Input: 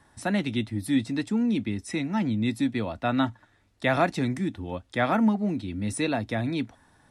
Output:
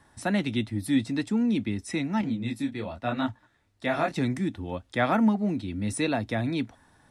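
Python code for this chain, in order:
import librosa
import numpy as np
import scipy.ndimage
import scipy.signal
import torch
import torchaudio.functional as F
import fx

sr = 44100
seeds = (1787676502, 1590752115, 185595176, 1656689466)

y = fx.detune_double(x, sr, cents=33, at=(2.21, 4.16))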